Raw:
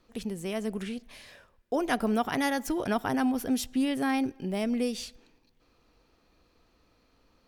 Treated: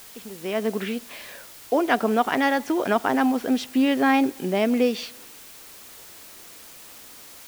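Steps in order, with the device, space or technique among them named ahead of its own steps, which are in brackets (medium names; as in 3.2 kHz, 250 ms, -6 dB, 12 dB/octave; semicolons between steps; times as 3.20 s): dictaphone (band-pass 270–3400 Hz; level rider gain up to 16 dB; wow and flutter 28 cents; white noise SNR 20 dB); trim -5 dB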